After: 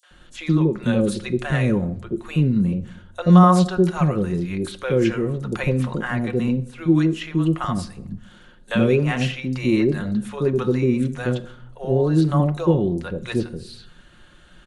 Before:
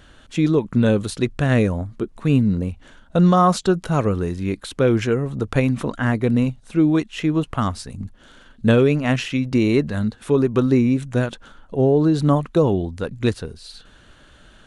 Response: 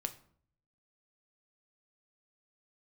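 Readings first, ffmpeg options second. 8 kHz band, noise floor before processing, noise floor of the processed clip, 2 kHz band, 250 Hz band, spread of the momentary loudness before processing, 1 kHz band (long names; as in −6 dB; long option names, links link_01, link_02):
−2.5 dB, −50 dBFS, −50 dBFS, −1.0 dB, −1.0 dB, 11 LU, −0.5 dB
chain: -filter_complex "[0:a]aecho=1:1:5.6:0.46,acrossover=split=610|5900[link_01][link_02][link_03];[link_02]adelay=30[link_04];[link_01]adelay=110[link_05];[link_05][link_04][link_03]amix=inputs=3:normalize=0,asplit=2[link_06][link_07];[1:a]atrim=start_sample=2205,asetrate=29106,aresample=44100[link_08];[link_07][link_08]afir=irnorm=-1:irlink=0,volume=-2.5dB[link_09];[link_06][link_09]amix=inputs=2:normalize=0,volume=-7dB"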